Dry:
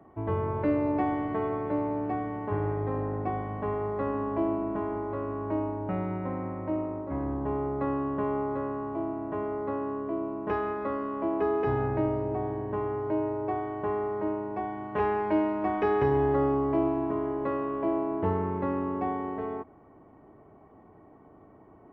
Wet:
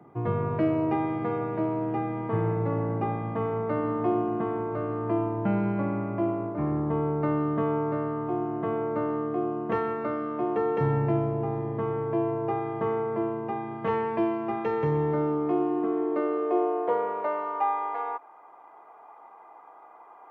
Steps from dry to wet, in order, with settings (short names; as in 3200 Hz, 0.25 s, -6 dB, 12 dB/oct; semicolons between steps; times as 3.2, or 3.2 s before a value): varispeed +8%; vocal rider 2 s; high-pass sweep 140 Hz -> 880 Hz, 14.94–17.65